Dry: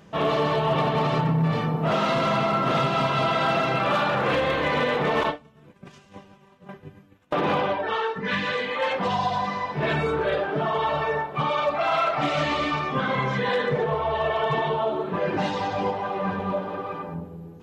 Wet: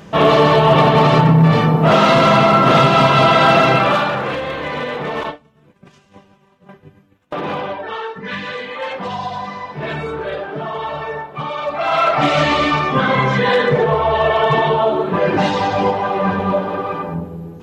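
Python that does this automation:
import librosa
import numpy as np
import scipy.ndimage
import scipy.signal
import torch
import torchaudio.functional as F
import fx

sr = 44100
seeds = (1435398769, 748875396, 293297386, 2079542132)

y = fx.gain(x, sr, db=fx.line((3.71, 11.5), (4.37, 0.0), (11.58, 0.0), (12.11, 9.5)))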